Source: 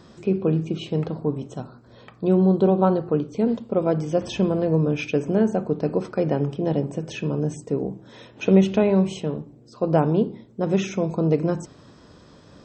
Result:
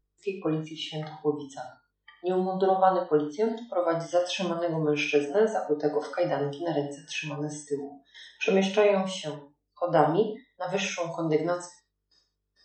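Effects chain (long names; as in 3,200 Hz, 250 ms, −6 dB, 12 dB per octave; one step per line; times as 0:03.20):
noise gate with hold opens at −37 dBFS
meter weighting curve A
hum with harmonics 50 Hz, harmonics 10, −61 dBFS −5 dB per octave
noise reduction from a noise print of the clip's start 25 dB
reverb whose tail is shaped and stops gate 170 ms falling, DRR 1.5 dB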